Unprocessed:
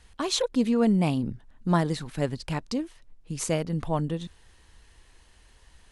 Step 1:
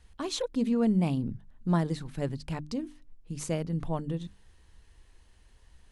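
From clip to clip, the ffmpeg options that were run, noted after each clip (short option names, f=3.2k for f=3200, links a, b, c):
-af "lowshelf=f=340:g=7.5,bandreject=f=50:t=h:w=6,bandreject=f=100:t=h:w=6,bandreject=f=150:t=h:w=6,bandreject=f=200:t=h:w=6,bandreject=f=250:t=h:w=6,bandreject=f=300:t=h:w=6,volume=-7.5dB"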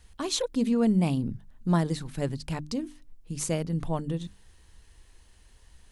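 -af "highshelf=f=4.8k:g=7,volume=2dB"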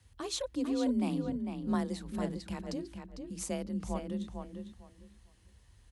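-filter_complex "[0:a]afreqshift=36,asplit=2[a][b];[b]adelay=451,lowpass=f=4k:p=1,volume=-6dB,asplit=2[c][d];[d]adelay=451,lowpass=f=4k:p=1,volume=0.2,asplit=2[e][f];[f]adelay=451,lowpass=f=4k:p=1,volume=0.2[g];[c][e][g]amix=inputs=3:normalize=0[h];[a][h]amix=inputs=2:normalize=0,volume=-7.5dB"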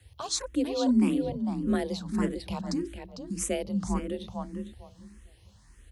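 -filter_complex "[0:a]asplit=2[a][b];[b]afreqshift=1.7[c];[a][c]amix=inputs=2:normalize=1,volume=9dB"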